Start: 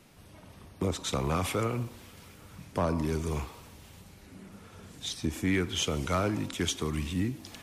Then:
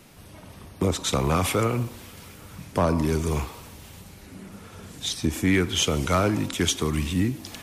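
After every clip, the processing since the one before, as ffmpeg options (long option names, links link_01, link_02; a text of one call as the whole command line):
ffmpeg -i in.wav -af "highshelf=frequency=9900:gain=4.5,volume=6.5dB" out.wav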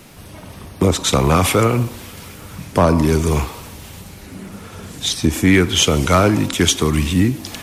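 ffmpeg -i in.wav -af "acrusher=bits=11:mix=0:aa=0.000001,volume=8.5dB" out.wav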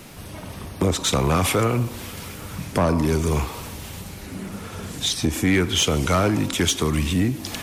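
ffmpeg -i in.wav -filter_complex "[0:a]asplit=2[link_01][link_02];[link_02]acompressor=threshold=-23dB:ratio=6,volume=3dB[link_03];[link_01][link_03]amix=inputs=2:normalize=0,asoftclip=type=tanh:threshold=-3.5dB,volume=-7dB" out.wav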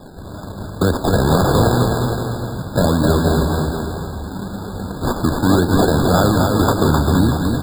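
ffmpeg -i in.wav -filter_complex "[0:a]acrusher=samples=30:mix=1:aa=0.000001:lfo=1:lforange=18:lforate=1.9,asplit=2[link_01][link_02];[link_02]aecho=0:1:260|468|634.4|767.5|874:0.631|0.398|0.251|0.158|0.1[link_03];[link_01][link_03]amix=inputs=2:normalize=0,afftfilt=real='re*eq(mod(floor(b*sr/1024/1700),2),0)':imag='im*eq(mod(floor(b*sr/1024/1700),2),0)':win_size=1024:overlap=0.75,volume=4.5dB" out.wav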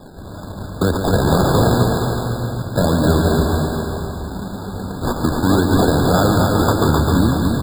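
ffmpeg -i in.wav -af "aecho=1:1:141|282|423|564|705|846|987:0.398|0.231|0.134|0.0777|0.0451|0.0261|0.0152,volume=-1dB" out.wav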